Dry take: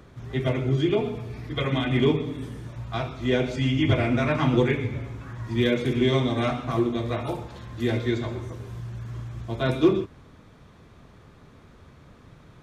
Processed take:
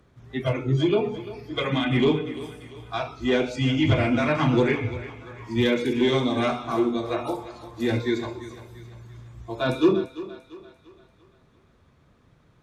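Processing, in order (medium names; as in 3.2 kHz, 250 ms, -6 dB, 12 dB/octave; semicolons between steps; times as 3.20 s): Chebyshev shaper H 5 -22 dB, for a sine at -8.5 dBFS; spectral noise reduction 12 dB; thinning echo 343 ms, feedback 47%, high-pass 270 Hz, level -14 dB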